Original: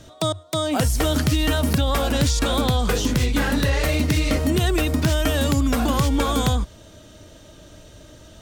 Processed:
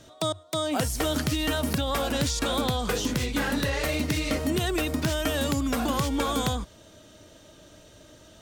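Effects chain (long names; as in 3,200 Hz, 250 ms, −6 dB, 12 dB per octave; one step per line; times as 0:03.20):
low-shelf EQ 110 Hz −9.5 dB
level −4 dB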